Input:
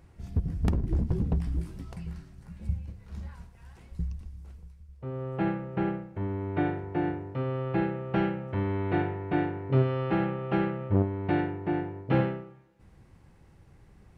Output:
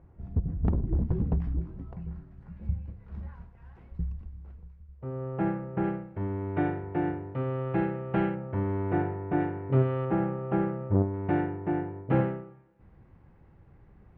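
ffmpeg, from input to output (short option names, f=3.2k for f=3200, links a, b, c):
-af "asetnsamples=n=441:p=0,asendcmd='1.01 lowpass f 1800;1.53 lowpass f 1100;2.31 lowpass f 1700;5.84 lowpass f 2400;8.35 lowpass f 1500;9.4 lowpass f 2000;10.05 lowpass f 1300;11.14 lowpass f 1800',lowpass=1.1k"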